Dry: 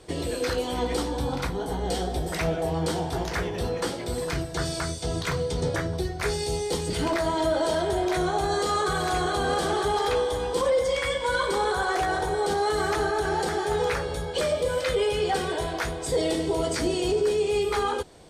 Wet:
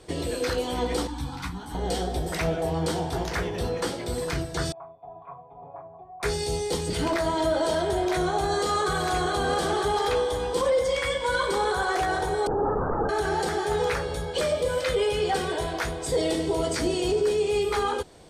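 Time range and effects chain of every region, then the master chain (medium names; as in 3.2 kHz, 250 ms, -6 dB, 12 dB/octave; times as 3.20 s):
1.07–1.75 s: high-order bell 510 Hz -15.5 dB 1 oct + three-phase chorus
4.72–6.23 s: cascade formant filter a + comb 7.2 ms, depth 77%
12.47–13.09 s: steep low-pass 1.3 kHz + LPC vocoder at 8 kHz whisper
whole clip: none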